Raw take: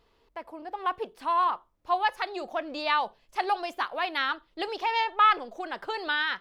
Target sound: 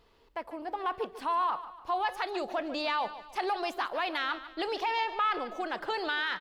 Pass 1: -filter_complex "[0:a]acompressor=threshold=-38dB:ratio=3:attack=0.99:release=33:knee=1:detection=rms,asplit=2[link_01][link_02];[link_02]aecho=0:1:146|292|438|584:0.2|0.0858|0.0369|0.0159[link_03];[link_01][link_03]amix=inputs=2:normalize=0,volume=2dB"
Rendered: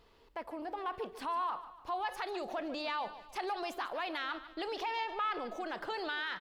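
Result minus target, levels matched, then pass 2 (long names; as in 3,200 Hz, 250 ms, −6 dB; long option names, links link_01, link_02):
downward compressor: peak gain reduction +6 dB
-filter_complex "[0:a]acompressor=threshold=-29dB:ratio=3:attack=0.99:release=33:knee=1:detection=rms,asplit=2[link_01][link_02];[link_02]aecho=0:1:146|292|438|584:0.2|0.0858|0.0369|0.0159[link_03];[link_01][link_03]amix=inputs=2:normalize=0,volume=2dB"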